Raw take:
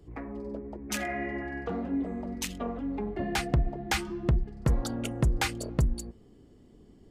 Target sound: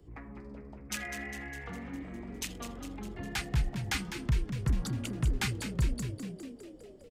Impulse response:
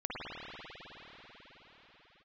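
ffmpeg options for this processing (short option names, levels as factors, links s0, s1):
-filter_complex "[0:a]acrossover=split=210|970|4800[s0][s1][s2][s3];[s1]acompressor=threshold=0.00224:ratio=4[s4];[s0][s4][s2][s3]amix=inputs=4:normalize=0,asplit=9[s5][s6][s7][s8][s9][s10][s11][s12][s13];[s6]adelay=203,afreqshift=70,volume=0.355[s14];[s7]adelay=406,afreqshift=140,volume=0.219[s15];[s8]adelay=609,afreqshift=210,volume=0.136[s16];[s9]adelay=812,afreqshift=280,volume=0.0841[s17];[s10]adelay=1015,afreqshift=350,volume=0.0525[s18];[s11]adelay=1218,afreqshift=420,volume=0.0324[s19];[s12]adelay=1421,afreqshift=490,volume=0.0202[s20];[s13]adelay=1624,afreqshift=560,volume=0.0124[s21];[s5][s14][s15][s16][s17][s18][s19][s20][s21]amix=inputs=9:normalize=0,volume=0.708"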